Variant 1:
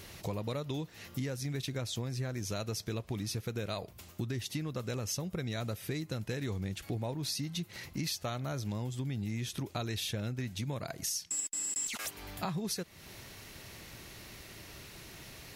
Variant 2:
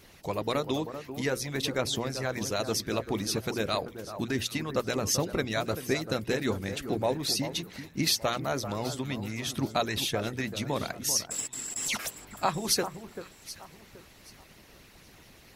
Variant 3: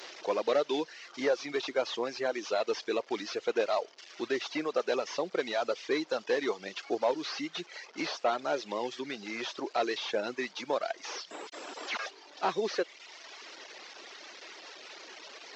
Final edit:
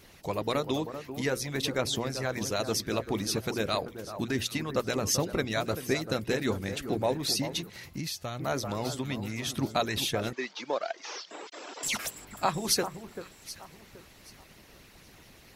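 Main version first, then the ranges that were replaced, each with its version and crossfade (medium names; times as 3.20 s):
2
7.70–8.40 s: from 1
10.33–11.83 s: from 3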